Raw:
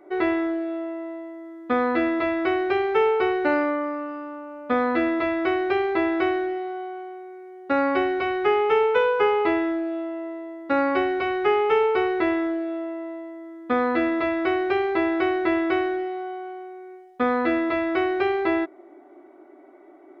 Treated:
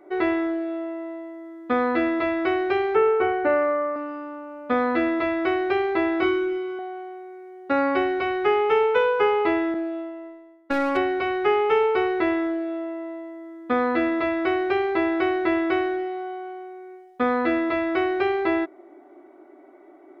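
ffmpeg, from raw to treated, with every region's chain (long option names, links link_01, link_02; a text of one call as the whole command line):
ffmpeg -i in.wav -filter_complex "[0:a]asettb=1/sr,asplit=3[link_01][link_02][link_03];[link_01]atrim=end=2.954[link_04];[link_02]atrim=start=2.95:end=3.96,asetpts=PTS-STARTPTS,afade=type=in:duration=0.004:curve=qsin,afade=type=out:start_time=1.006:duration=0.004:curve=qsin,lowpass=2000,equalizer=frequency=350:width_type=o:width=0.31:gain=4.5,asplit=2[link_05][link_06];[link_06]adelay=12,volume=-4.5dB[link_07];[link_05][link_07]amix=inputs=2:normalize=0,atrim=end_sample=44541[link_08];[link_03]atrim=start=3.956[link_09];[link_04][link_08]acrossfade=duration=0.004:curve1=hsin:curve2=qsin[link_10];[link_10][link_09]acrossfade=duration=0.004:curve1=qsin:curve2=hsin,asettb=1/sr,asplit=3[link_11][link_12][link_13];[link_11]atrim=end=6.204[link_14];[link_12]atrim=start=6.2:end=6.79,asetpts=PTS-STARTPTS,afade=type=in:duration=0.004:curve=qsin,afade=type=out:start_time=0.586:duration=0.004:curve=qsin,equalizer=frequency=1700:width=5.5:gain=-5.5,asplit=2[link_15][link_16];[link_16]adelay=25,volume=-2.5dB[link_17];[link_15][link_17]amix=inputs=2:normalize=0,atrim=end_sample=26019[link_18];[link_13]atrim=start=6.786[link_19];[link_14][link_18]acrossfade=duration=0.004:curve1=hsin:curve2=qsin[link_20];[link_20][link_19]acrossfade=duration=0.004:curve1=qsin:curve2=hsin,asettb=1/sr,asplit=3[link_21][link_22][link_23];[link_21]atrim=end=9.744[link_24];[link_22]atrim=start=9.74:end=10.97,asetpts=PTS-STARTPTS,afade=type=in:duration=0.004:curve=qsin,afade=type=out:start_time=1.226:duration=0.004:curve=qsin,agate=range=-33dB:threshold=-27dB:ratio=3:release=100:detection=peak,aeval=exprs='clip(val(0),-1,0.0708)':channel_layout=same[link_25];[link_23]atrim=start=10.966[link_26];[link_24][link_25]acrossfade=duration=0.004:curve1=hsin:curve2=qsin[link_27];[link_27][link_26]acrossfade=duration=0.004:curve1=qsin:curve2=hsin" out.wav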